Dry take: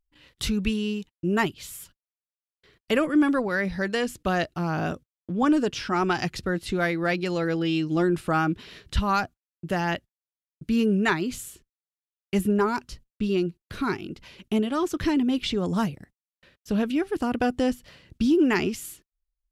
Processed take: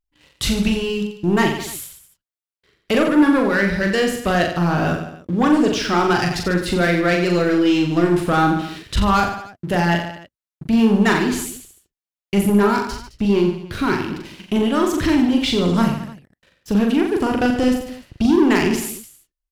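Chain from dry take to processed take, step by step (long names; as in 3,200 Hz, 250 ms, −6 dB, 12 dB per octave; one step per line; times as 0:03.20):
leveller curve on the samples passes 2
reverse bouncing-ball delay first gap 40 ms, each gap 1.2×, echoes 5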